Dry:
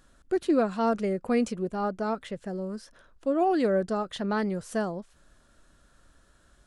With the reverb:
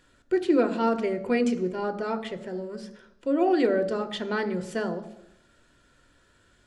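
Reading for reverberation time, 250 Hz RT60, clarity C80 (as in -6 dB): 0.85 s, 0.90 s, 16.5 dB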